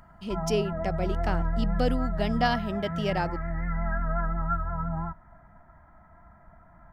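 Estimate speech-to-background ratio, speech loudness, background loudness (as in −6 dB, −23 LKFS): 1.0 dB, −30.5 LKFS, −31.5 LKFS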